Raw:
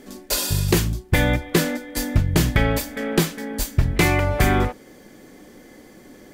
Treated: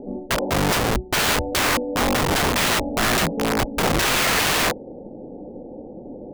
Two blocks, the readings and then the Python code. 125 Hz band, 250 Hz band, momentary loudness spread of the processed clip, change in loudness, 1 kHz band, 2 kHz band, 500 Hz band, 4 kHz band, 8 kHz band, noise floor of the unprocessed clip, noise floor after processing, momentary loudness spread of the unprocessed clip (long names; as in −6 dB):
−7.0 dB, −1.5 dB, 20 LU, +1.5 dB, +5.5 dB, +3.5 dB, +1.5 dB, +6.0 dB, +3.5 dB, −47 dBFS, −39 dBFS, 6 LU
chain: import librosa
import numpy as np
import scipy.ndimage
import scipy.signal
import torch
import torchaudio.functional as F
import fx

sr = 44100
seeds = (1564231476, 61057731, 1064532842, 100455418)

y = scipy.signal.sosfilt(scipy.signal.cheby1(6, 1.0, 870.0, 'lowpass', fs=sr, output='sos'), x)
y = fx.peak_eq(y, sr, hz=510.0, db=6.0, octaves=0.37)
y = (np.mod(10.0 ** (23.5 / 20.0) * y + 1.0, 2.0) - 1.0) / 10.0 ** (23.5 / 20.0)
y = y * librosa.db_to_amplitude(8.5)